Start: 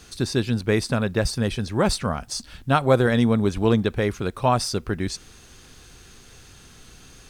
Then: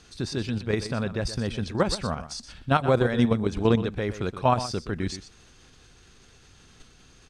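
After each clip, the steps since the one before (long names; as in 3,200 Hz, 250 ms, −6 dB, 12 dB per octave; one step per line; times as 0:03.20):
low-pass filter 7,100 Hz 12 dB per octave
output level in coarse steps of 9 dB
single-tap delay 123 ms −12.5 dB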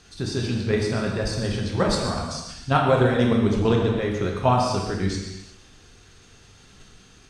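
reverb whose tail is shaped and stops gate 410 ms falling, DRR −1 dB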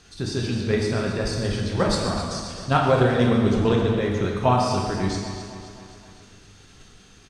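repeating echo 262 ms, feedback 56%, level −11 dB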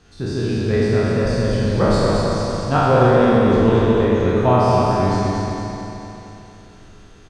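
peak hold with a decay on every bin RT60 2.46 s
high-shelf EQ 2,200 Hz −10.5 dB
repeating echo 224 ms, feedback 58%, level −5 dB
level +1 dB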